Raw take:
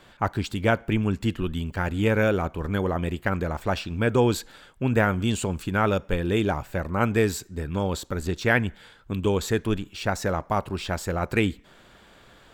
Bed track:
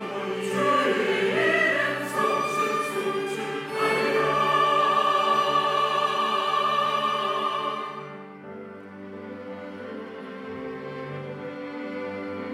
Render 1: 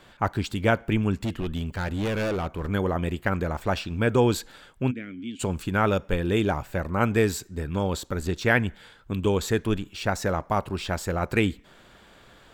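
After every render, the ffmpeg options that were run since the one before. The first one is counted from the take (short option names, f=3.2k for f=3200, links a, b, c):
-filter_complex "[0:a]asettb=1/sr,asplit=3[a][b][c];[a]atrim=end=1.244[d];[b]atrim=start=1.24:end=2.67,asetpts=PTS-STARTPTS,afade=t=in:d=0.004:c=qsin,afade=t=out:st=1.426:d=0.004:c=qsin,volume=24dB,asoftclip=hard,volume=-24dB[e];[c]atrim=start=2.666[f];[d][e]acrossfade=d=0.004:c1=hsin:c2=qsin[g];[g][f]acrossfade=d=0.004:c1=qsin:c2=hsin,asplit=3[h][i][j];[h]afade=t=out:st=4.9:d=0.02[k];[i]asplit=3[l][m][n];[l]bandpass=f=270:t=q:w=8,volume=0dB[o];[m]bandpass=f=2.29k:t=q:w=8,volume=-6dB[p];[n]bandpass=f=3.01k:t=q:w=8,volume=-9dB[q];[o][p][q]amix=inputs=3:normalize=0,afade=t=in:st=4.9:d=0.02,afade=t=out:st=5.39:d=0.02[r];[j]afade=t=in:st=5.39:d=0.02[s];[k][r][s]amix=inputs=3:normalize=0"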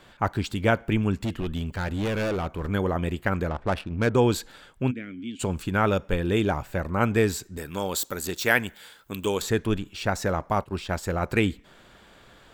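-filter_complex "[0:a]asettb=1/sr,asplit=3[a][b][c];[a]atrim=end=3.494[d];[b]atrim=start=3.49:end=4.15,asetpts=PTS-STARTPTS,afade=t=in:d=0.004:c=qsin,afade=t=out:st=0.656:d=0.004:c=qsin,adynamicsmooth=sensitivity=3.5:basefreq=900[e];[c]atrim=start=4.146[f];[d][e]acrossfade=d=0.004:c1=hsin:c2=qsin[g];[g][f]acrossfade=d=0.004:c1=qsin:c2=hsin,asettb=1/sr,asplit=3[h][i][j];[h]atrim=end=7.574[k];[i]atrim=start=7.57:end=9.42,asetpts=PTS-STARTPTS,afade=t=in:d=0.004:c=qsin,afade=t=out:st=1.846:d=0.004:c=qsin,aemphasis=mode=production:type=bsi[l];[j]atrim=start=9.416[m];[k][l]acrossfade=d=0.004:c1=hsin:c2=qsin[n];[n][m]acrossfade=d=0.004:c1=qsin:c2=hsin,asplit=3[o][p][q];[o]afade=t=out:st=10.6:d=0.02[r];[p]agate=range=-33dB:threshold=-31dB:ratio=3:release=100:detection=peak,afade=t=in:st=10.6:d=0.02,afade=t=out:st=11.02:d=0.02[s];[q]afade=t=in:st=11.02:d=0.02[t];[r][s][t]amix=inputs=3:normalize=0"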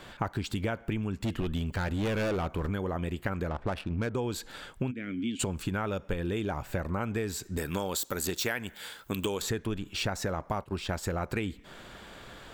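-filter_complex "[0:a]asplit=2[a][b];[b]alimiter=limit=-17dB:level=0:latency=1,volume=-2dB[c];[a][c]amix=inputs=2:normalize=0,acompressor=threshold=-28dB:ratio=10"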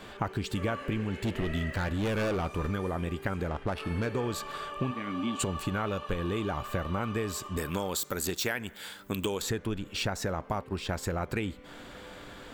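-filter_complex "[1:a]volume=-18.5dB[a];[0:a][a]amix=inputs=2:normalize=0"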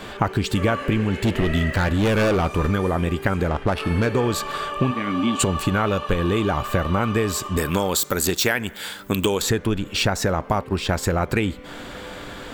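-af "volume=10.5dB"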